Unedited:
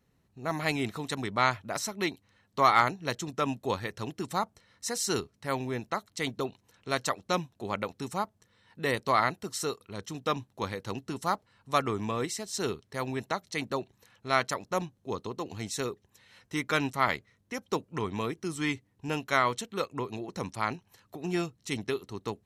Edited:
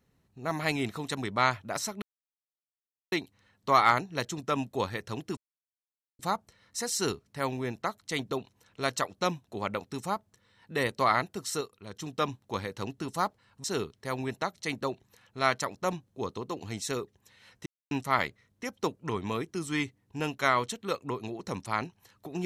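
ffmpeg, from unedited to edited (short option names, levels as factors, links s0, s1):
-filter_complex "[0:a]asplit=8[s0][s1][s2][s3][s4][s5][s6][s7];[s0]atrim=end=2.02,asetpts=PTS-STARTPTS,afade=t=out:st=2.016:d=0.004:c=hsin,apad=pad_dur=1.1[s8];[s1]atrim=start=2.02:end=4.27,asetpts=PTS-STARTPTS,afade=t=in:d=0.004:c=hsin,afade=t=out:st=2.246:d=0.004:c=hsin,apad=pad_dur=0.82[s9];[s2]atrim=start=4.27:end=9.692,asetpts=PTS-STARTPTS,afade=t=in:d=0.004:c=hsin[s10];[s3]atrim=start=9.688:end=10.042,asetpts=PTS-STARTPTS,volume=0.596[s11];[s4]atrim=start=10.038:end=11.722[s12];[s5]atrim=start=12.528:end=16.55,asetpts=PTS-STARTPTS,afade=t=out:st=4.018:d=0.004:c=hsin[s13];[s6]atrim=start=16.55:end=16.8,asetpts=PTS-STARTPTS,volume=0[s14];[s7]atrim=start=16.8,asetpts=PTS-STARTPTS,afade=t=in:d=0.004:c=hsin[s15];[s8][s9][s10]concat=n=3:v=0:a=1[s16];[s16][s11]acrossfade=d=0.004:c1=hsin:c2=hsin[s17];[s17][s12]acrossfade=d=0.004:c1=hsin:c2=hsin[s18];[s13][s14][s15]concat=n=3:v=0:a=1[s19];[s18][s19]acrossfade=d=0.004:c1=hsin:c2=hsin"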